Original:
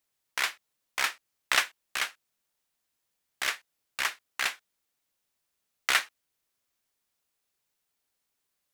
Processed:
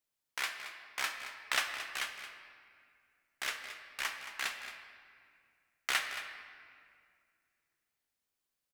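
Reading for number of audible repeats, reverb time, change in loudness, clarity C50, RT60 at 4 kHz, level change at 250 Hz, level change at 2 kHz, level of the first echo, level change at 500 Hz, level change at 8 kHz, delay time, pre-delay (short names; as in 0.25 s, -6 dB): 1, 2.1 s, -7.5 dB, 5.5 dB, 1.5 s, -5.5 dB, -6.0 dB, -12.0 dB, -5.5 dB, -6.5 dB, 0.223 s, 12 ms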